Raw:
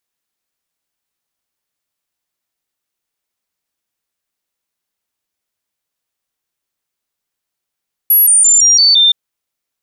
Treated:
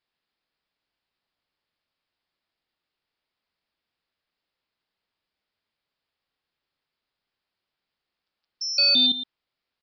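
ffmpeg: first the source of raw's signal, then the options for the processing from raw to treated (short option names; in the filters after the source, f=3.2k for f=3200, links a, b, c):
-f lavfi -i "aevalsrc='0.531*clip(min(mod(t,0.17),0.17-mod(t,0.17))/0.005,0,1)*sin(2*PI*11400*pow(2,-floor(t/0.17)/3)*mod(t,0.17))':d=1.02:s=44100"
-af "aresample=11025,asoftclip=type=tanh:threshold=-17.5dB,aresample=44100,aecho=1:1:116:0.224"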